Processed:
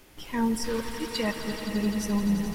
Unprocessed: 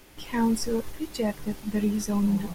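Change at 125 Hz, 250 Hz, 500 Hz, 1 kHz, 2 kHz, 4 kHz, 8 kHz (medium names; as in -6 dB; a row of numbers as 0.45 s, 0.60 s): -1.0 dB, -1.5 dB, -1.5 dB, 0.0 dB, +4.0 dB, +4.0 dB, -0.5 dB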